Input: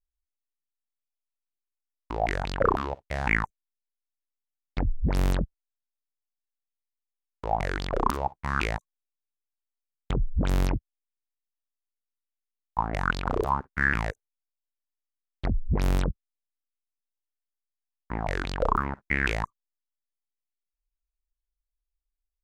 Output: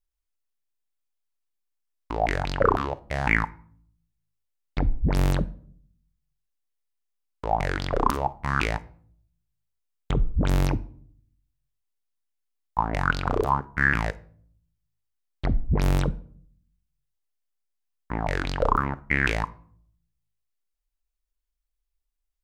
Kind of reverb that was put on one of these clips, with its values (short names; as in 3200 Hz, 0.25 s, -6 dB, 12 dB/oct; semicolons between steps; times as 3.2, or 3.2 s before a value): shoebox room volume 750 m³, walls furnished, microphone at 0.38 m; gain +2.5 dB